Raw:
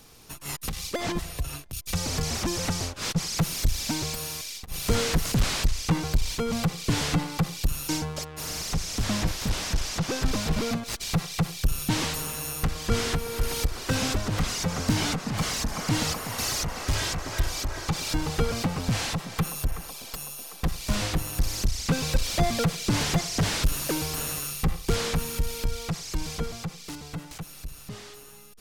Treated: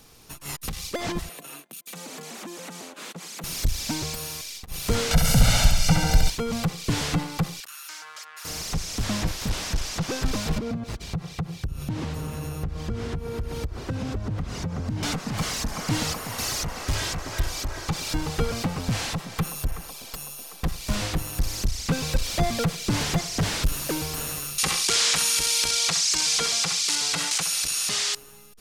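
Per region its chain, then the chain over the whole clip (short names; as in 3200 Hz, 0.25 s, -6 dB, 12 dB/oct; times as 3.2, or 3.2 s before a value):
1.29–3.44 steep high-pass 190 Hz + bell 5200 Hz -8 dB 0.55 oct + compressor 4:1, threshold -36 dBFS
5.11–6.3 comb 1.4 ms, depth 92% + upward compressor, threshold -18 dBFS + flutter echo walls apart 11.5 m, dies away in 0.94 s
7.6–8.45 resonant high-pass 1400 Hz, resonance Q 2.3 + compressor 4:1, threshold -37 dBFS + Doppler distortion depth 0.1 ms
10.58–15.03 HPF 63 Hz + tilt -3.5 dB/oct + compressor 4:1, threshold -27 dBFS
24.58–28.15 weighting filter ITU-R 468 + flutter echo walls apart 11.3 m, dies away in 0.36 s + fast leveller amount 70%
whole clip: dry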